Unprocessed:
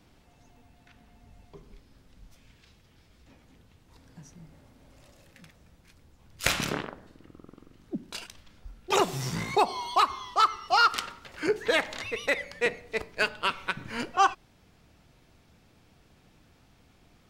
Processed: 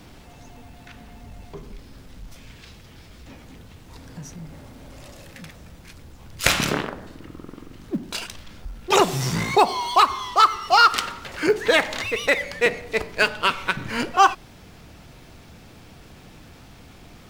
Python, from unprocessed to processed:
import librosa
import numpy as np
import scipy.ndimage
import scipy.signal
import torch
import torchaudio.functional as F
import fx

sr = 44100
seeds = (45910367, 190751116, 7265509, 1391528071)

y = fx.law_mismatch(x, sr, coded='mu')
y = y * librosa.db_to_amplitude(6.5)